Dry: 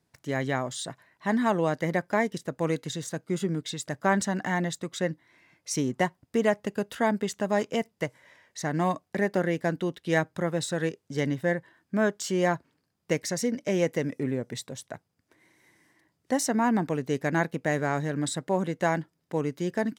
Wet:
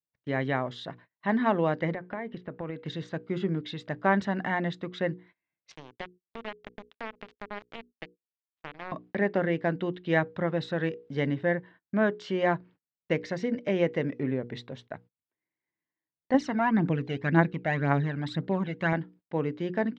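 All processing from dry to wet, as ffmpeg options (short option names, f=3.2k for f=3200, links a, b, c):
-filter_complex "[0:a]asettb=1/sr,asplit=3[a][b][c];[a]atrim=end=1.944[d];[b]atrim=start=1.94:end=2.86,asetpts=PTS-STARTPTS,afade=t=in:d=0.004:c=qsin,afade=t=out:st=0.916:d=0.004:c=qsin,acompressor=threshold=-31dB:ratio=5:attack=3.2:release=140:knee=1:detection=peak,lowpass=2.9k[e];[c]atrim=start=2.856[f];[d][e]acrossfade=d=0.004:c1=hsin:c2=qsin[g];[g][f]acrossfade=d=0.004:c1=qsin:c2=hsin,asettb=1/sr,asplit=3[h][i][j];[h]atrim=end=5.714[k];[i]atrim=start=5.71:end=8.92,asetpts=PTS-STARTPTS,afade=t=in:d=0.004:c=qsin,afade=t=out:st=3.206:d=0.004:c=qsin,highpass=f=280:p=1,acompressor=threshold=-38dB:ratio=2.5:attack=3.2:release=140:knee=1:detection=peak,acrusher=bits=4:mix=0:aa=0.5[l];[j]atrim=start=8.916[m];[k][l]acrossfade=d=0.004:c1=hsin:c2=qsin[n];[n][m]acrossfade=d=0.004:c1=qsin:c2=hsin,asettb=1/sr,asplit=3[o][p][q];[o]atrim=end=16.344[r];[p]atrim=start=16.34:end=18.93,asetpts=PTS-STARTPTS,afade=t=in:d=0.004:c=qsin,afade=t=out:st=2.586:d=0.004:c=qsin,equalizer=f=630:w=0.78:g=-3.5,aphaser=in_gain=1:out_gain=1:delay=1.5:decay=0.6:speed=1.9:type=triangular[s];[q]atrim=start=18.926[t];[r][s]acrossfade=d=0.004:c1=hsin:c2=qsin[u];[u][t]acrossfade=d=0.004:c1=qsin:c2=hsin,lowpass=f=3.6k:w=0.5412,lowpass=f=3.6k:w=1.3066,bandreject=f=60:t=h:w=6,bandreject=f=120:t=h:w=6,bandreject=f=180:t=h:w=6,bandreject=f=240:t=h:w=6,bandreject=f=300:t=h:w=6,bandreject=f=360:t=h:w=6,bandreject=f=420:t=h:w=6,bandreject=f=480:t=h:w=6,agate=range=-29dB:threshold=-51dB:ratio=16:detection=peak"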